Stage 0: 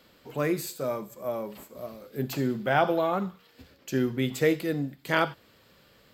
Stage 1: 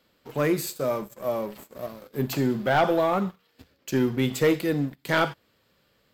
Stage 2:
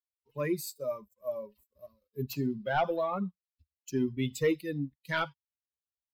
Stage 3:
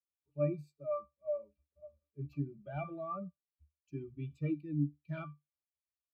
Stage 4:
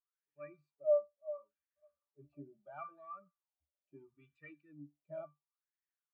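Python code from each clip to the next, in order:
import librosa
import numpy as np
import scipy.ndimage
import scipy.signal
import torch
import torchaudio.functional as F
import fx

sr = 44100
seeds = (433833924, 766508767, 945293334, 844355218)

y1 = fx.leveller(x, sr, passes=2)
y1 = y1 * 10.0 ** (-3.5 / 20.0)
y2 = fx.bin_expand(y1, sr, power=2.0)
y2 = y2 * 10.0 ** (-4.0 / 20.0)
y3 = fx.octave_resonator(y2, sr, note='D', decay_s=0.16)
y3 = y3 * 10.0 ** (4.5 / 20.0)
y4 = fx.filter_lfo_bandpass(y3, sr, shape='sine', hz=0.73, low_hz=580.0, high_hz=1800.0, q=6.6)
y4 = y4 * 10.0 ** (8.5 / 20.0)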